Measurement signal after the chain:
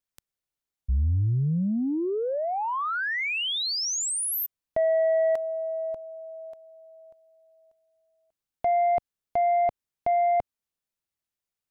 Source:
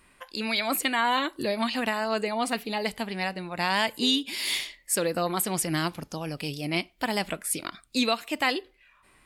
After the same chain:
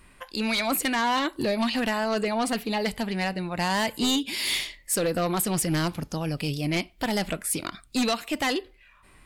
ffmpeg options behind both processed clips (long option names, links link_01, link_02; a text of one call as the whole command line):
ffmpeg -i in.wav -af "lowshelf=frequency=160:gain=9,aeval=exprs='0.316*(cos(1*acos(clip(val(0)/0.316,-1,1)))-cos(1*PI/2))+0.141*(cos(5*acos(clip(val(0)/0.316,-1,1)))-cos(5*PI/2))':channel_layout=same,volume=-7.5dB" out.wav